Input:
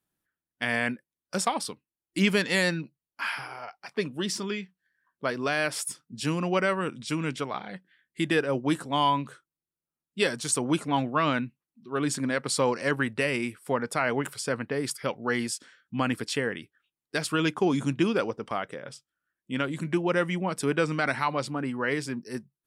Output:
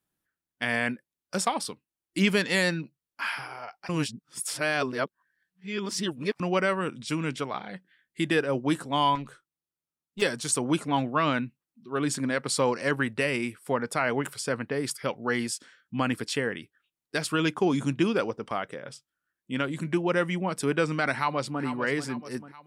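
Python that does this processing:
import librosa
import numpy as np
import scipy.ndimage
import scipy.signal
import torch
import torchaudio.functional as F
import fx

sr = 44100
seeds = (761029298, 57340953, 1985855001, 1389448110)

y = fx.tube_stage(x, sr, drive_db=30.0, bias=0.55, at=(9.15, 10.22))
y = fx.echo_throw(y, sr, start_s=21.15, length_s=0.48, ms=440, feedback_pct=50, wet_db=-10.5)
y = fx.edit(y, sr, fx.reverse_span(start_s=3.89, length_s=2.51), tone=tone)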